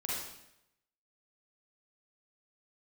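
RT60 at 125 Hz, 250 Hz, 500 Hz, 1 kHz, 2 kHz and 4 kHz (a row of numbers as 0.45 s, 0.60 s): 0.90 s, 0.85 s, 0.85 s, 0.80 s, 0.80 s, 0.75 s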